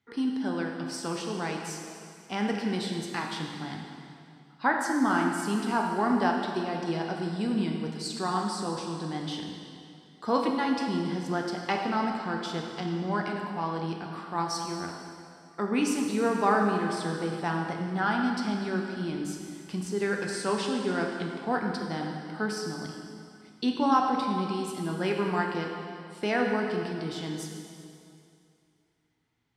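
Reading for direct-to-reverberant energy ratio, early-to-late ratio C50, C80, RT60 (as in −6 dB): 1.0 dB, 3.0 dB, 4.0 dB, 2.5 s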